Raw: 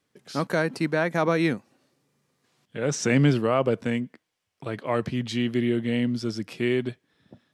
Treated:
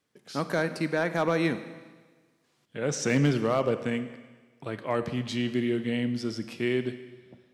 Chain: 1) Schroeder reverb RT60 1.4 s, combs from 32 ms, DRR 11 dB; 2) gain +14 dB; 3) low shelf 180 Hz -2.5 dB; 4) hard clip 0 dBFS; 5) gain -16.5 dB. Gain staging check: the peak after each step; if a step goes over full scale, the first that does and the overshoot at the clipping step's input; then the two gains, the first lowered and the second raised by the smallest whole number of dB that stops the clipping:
-9.5, +4.5, +4.0, 0.0, -16.5 dBFS; step 2, 4.0 dB; step 2 +10 dB, step 5 -12.5 dB

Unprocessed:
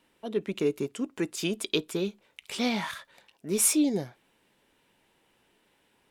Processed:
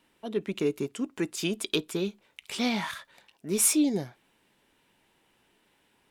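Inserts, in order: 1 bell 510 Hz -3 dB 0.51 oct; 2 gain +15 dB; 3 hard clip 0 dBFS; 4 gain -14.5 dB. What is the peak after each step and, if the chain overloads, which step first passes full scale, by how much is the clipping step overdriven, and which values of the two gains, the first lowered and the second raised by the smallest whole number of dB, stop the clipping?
-10.5, +4.5, 0.0, -14.5 dBFS; step 2, 4.5 dB; step 2 +10 dB, step 4 -9.5 dB

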